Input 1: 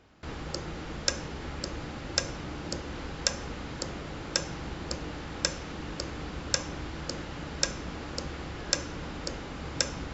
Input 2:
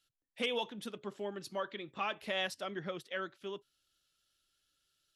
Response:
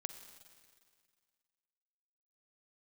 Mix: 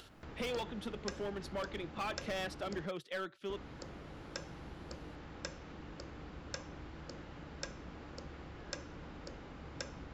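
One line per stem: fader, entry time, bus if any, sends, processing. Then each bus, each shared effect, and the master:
-11.0 dB, 0.00 s, muted 2.86–3.49, no send, high shelf 4300 Hz -11.5 dB
+1.0 dB, 0.00 s, no send, LPF 3200 Hz 6 dB/oct; hard clip -35.5 dBFS, distortion -10 dB; three-band squash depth 40%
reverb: off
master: upward compressor, threshold -46 dBFS

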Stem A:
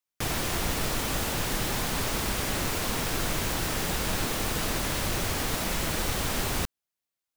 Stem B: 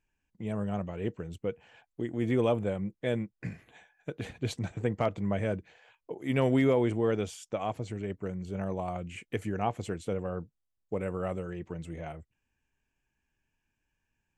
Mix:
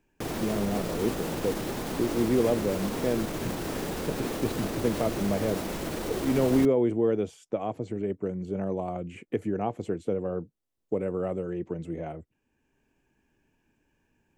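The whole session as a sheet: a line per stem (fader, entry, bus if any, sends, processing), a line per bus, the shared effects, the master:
-5.5 dB, 0.00 s, no send, limiter -23.5 dBFS, peak gain reduction 8 dB
-7.0 dB, 0.00 s, no send, three-band squash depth 40%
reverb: off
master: bell 340 Hz +13 dB 2.5 oct

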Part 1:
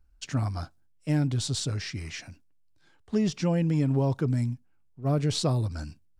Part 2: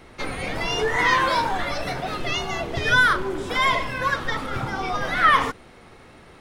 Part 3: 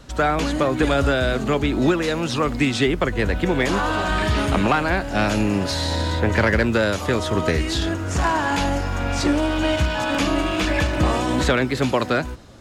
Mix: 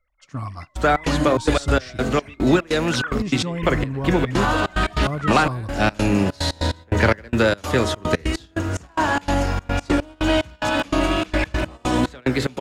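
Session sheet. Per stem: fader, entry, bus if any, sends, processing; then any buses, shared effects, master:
-2.5 dB, 0.00 s, no send, bell 1100 Hz +13.5 dB 0.24 oct
-8.0 dB, 0.00 s, no send, sine-wave speech; HPF 830 Hz; auto duck -7 dB, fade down 0.30 s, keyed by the first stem
+2.5 dB, 0.65 s, no send, de-hum 71.6 Hz, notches 31; step gate ".xx.xxx.x.x..xx." 146 bpm -24 dB; wow and flutter 17 cents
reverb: off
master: gate -34 dBFS, range -10 dB

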